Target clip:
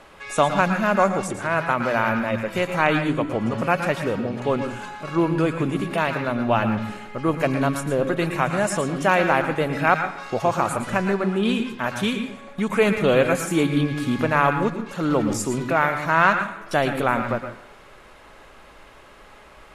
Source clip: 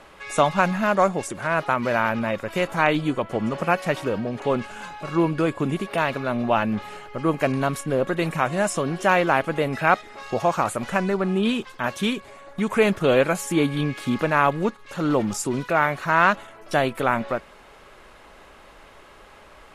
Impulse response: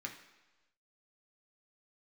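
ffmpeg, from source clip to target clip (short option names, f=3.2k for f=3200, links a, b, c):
-filter_complex "[0:a]asplit=2[a][b];[1:a]atrim=start_sample=2205,lowshelf=f=200:g=6,adelay=113[c];[b][c]afir=irnorm=-1:irlink=0,volume=-6dB[d];[a][d]amix=inputs=2:normalize=0"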